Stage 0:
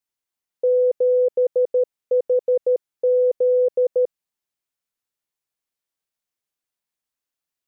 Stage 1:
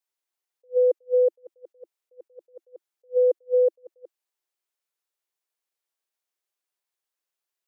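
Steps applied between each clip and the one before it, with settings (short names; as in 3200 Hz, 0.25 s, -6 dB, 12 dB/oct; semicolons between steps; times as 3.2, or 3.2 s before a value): elliptic high-pass 340 Hz; attack slew limiter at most 460 dB/s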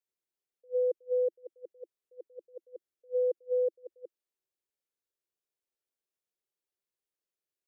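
resonant low shelf 610 Hz +7.5 dB, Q 1.5; limiter -15 dBFS, peak gain reduction 8.5 dB; gain -8.5 dB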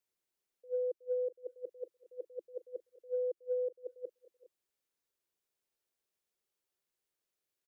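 compressor 5:1, threshold -37 dBFS, peak gain reduction 10 dB; tapped delay 0.382/0.409 s -19.5/-20 dB; gain +3.5 dB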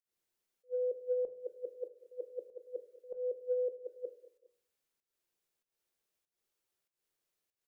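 pump 96 bpm, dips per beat 1, -22 dB, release 0.228 s; on a send at -9.5 dB: reverb RT60 0.50 s, pre-delay 4 ms; on the sum: gain +1.5 dB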